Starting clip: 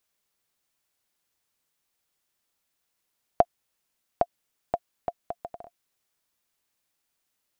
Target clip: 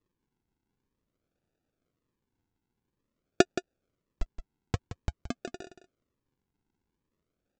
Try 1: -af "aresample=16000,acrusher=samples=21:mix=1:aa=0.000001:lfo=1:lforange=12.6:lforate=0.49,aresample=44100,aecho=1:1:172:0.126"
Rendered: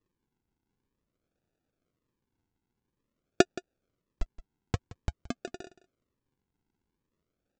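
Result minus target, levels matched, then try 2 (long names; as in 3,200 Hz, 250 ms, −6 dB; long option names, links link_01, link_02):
echo-to-direct −6.5 dB
-af "aresample=16000,acrusher=samples=21:mix=1:aa=0.000001:lfo=1:lforange=12.6:lforate=0.49,aresample=44100,aecho=1:1:172:0.266"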